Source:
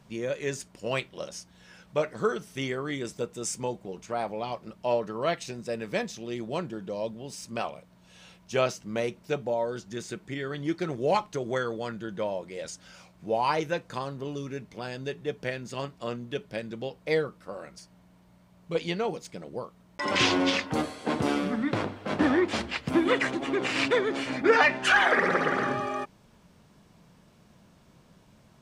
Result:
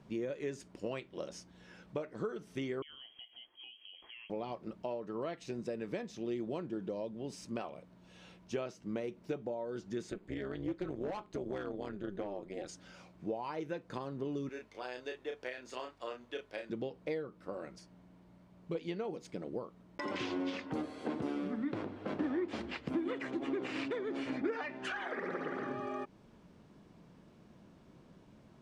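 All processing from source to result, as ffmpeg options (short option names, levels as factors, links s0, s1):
-filter_complex "[0:a]asettb=1/sr,asplit=3[s0][s1][s2];[s0]atrim=end=2.824[s3];[s1]atrim=start=2.82:end=4.3,asetpts=PTS-STARTPTS,afade=t=in:d=0.004:c=qsin,afade=t=out:st=1.476:d=0.004:c=qsin,acompressor=threshold=0.00794:ratio=8:attack=3.2:release=140:knee=1:detection=peak,lowpass=f=2900:t=q:w=0.5098,lowpass=f=2900:t=q:w=0.6013,lowpass=f=2900:t=q:w=0.9,lowpass=f=2900:t=q:w=2.563,afreqshift=-3400,equalizer=f=1300:t=o:w=0.49:g=-7.5[s4];[s2]atrim=start=4.296[s5];[s3][s4]acrossfade=d=0.004:c1=hsin:c2=qsin[s6];[s6][s5]acrossfade=d=0.004:c1=qsin:c2=hsin,asettb=1/sr,asplit=3[s7][s8][s9];[s7]atrim=end=10.104[s10];[s8]atrim=start=10.1:end=12.69,asetpts=PTS-STARTPTS,afade=t=in:d=0.004:c=qsin,afade=t=out:st=2.586:d=0.004:c=qsin,bandreject=f=5700:w=7.3,tremolo=f=200:d=0.889,asoftclip=type=hard:threshold=0.0501[s11];[s9]atrim=start=12.686[s12];[s10][s11]acrossfade=d=0.004:c1=hsin:c2=qsin[s13];[s13][s12]acrossfade=d=0.004:c1=qsin:c2=hsin,asettb=1/sr,asplit=3[s14][s15][s16];[s14]atrim=end=14.494[s17];[s15]atrim=start=14.49:end=16.7,asetpts=PTS-STARTPTS,afade=t=in:d=0.004:c=qsin,afade=t=out:st=2.206:d=0.004:c=qsin,highpass=640,aeval=exprs='val(0)+0.000562*(sin(2*PI*50*n/s)+sin(2*PI*2*50*n/s)/2+sin(2*PI*3*50*n/s)/3+sin(2*PI*4*50*n/s)/4+sin(2*PI*5*50*n/s)/5)':c=same,asplit=2[s18][s19];[s19]adelay=32,volume=0.562[s20];[s18][s20]amix=inputs=2:normalize=0,atrim=end_sample=97461[s21];[s16]atrim=start=16.696[s22];[s17][s21]acrossfade=d=0.004:c1=hsin:c2=qsin[s23];[s23][s22]acrossfade=d=0.004:c1=qsin:c2=hsin,lowpass=f=3500:p=1,acompressor=threshold=0.0178:ratio=6,equalizer=f=320:t=o:w=1.1:g=7.5,volume=0.631"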